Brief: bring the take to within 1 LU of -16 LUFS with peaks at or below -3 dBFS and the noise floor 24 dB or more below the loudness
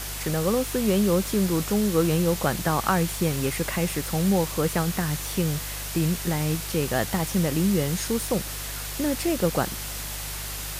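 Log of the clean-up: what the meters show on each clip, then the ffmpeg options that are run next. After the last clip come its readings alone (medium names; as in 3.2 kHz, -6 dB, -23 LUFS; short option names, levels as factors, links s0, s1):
hum 50 Hz; highest harmonic 150 Hz; hum level -35 dBFS; noise floor -33 dBFS; noise floor target -49 dBFS; loudness -25.0 LUFS; peak level -7.5 dBFS; loudness target -16.0 LUFS
-> -af "bandreject=f=50:t=h:w=4,bandreject=f=100:t=h:w=4,bandreject=f=150:t=h:w=4"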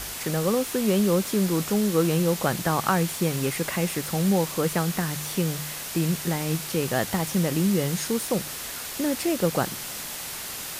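hum not found; noise floor -35 dBFS; noise floor target -50 dBFS
-> -af "afftdn=nr=15:nf=-35"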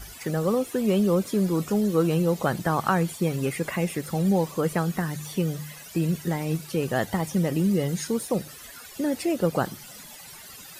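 noise floor -44 dBFS; noise floor target -50 dBFS
-> -af "afftdn=nr=6:nf=-44"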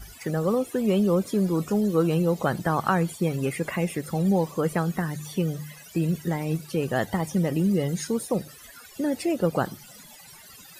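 noise floor -48 dBFS; noise floor target -50 dBFS
-> -af "afftdn=nr=6:nf=-48"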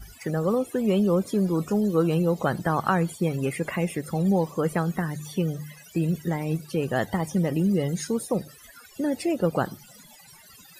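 noise floor -51 dBFS; loudness -26.0 LUFS; peak level -8.5 dBFS; loudness target -16.0 LUFS
-> -af "volume=3.16,alimiter=limit=0.708:level=0:latency=1"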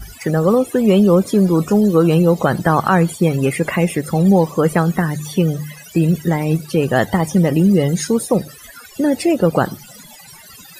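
loudness -16.0 LUFS; peak level -3.0 dBFS; noise floor -41 dBFS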